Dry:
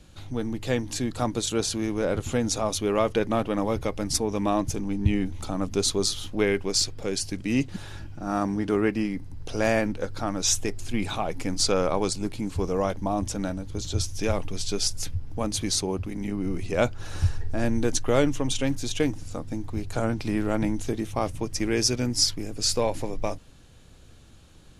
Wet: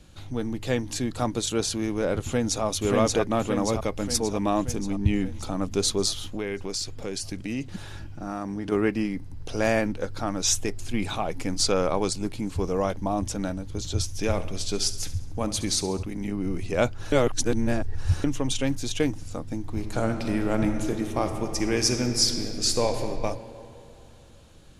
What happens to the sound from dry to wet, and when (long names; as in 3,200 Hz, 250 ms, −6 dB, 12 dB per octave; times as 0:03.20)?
0:02.23–0:02.64: delay throw 580 ms, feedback 60%, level −1 dB
0:06.26–0:08.72: downward compressor 3 to 1, threshold −28 dBFS
0:14.20–0:16.03: repeating echo 68 ms, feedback 56%, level −14.5 dB
0:17.12–0:18.24: reverse
0:19.60–0:23.04: thrown reverb, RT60 2.9 s, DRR 5.5 dB